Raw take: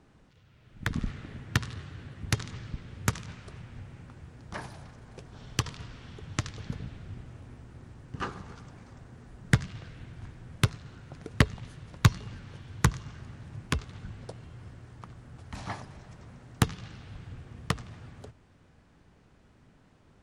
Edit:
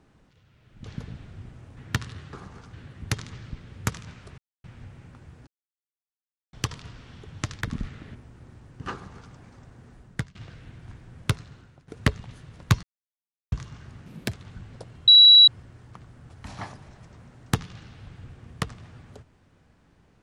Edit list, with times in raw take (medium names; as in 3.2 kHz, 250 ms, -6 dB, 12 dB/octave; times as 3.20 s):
0.84–1.38 s: swap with 6.56–7.49 s
3.59 s: insert silence 0.26 s
4.42–5.48 s: mute
8.27–8.67 s: copy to 1.94 s
9.26–9.69 s: fade out, to -21.5 dB
10.82–11.22 s: fade out, to -17.5 dB
12.17–12.86 s: mute
13.40–13.82 s: speed 152%
14.56 s: add tone 3.91 kHz -8.5 dBFS 0.40 s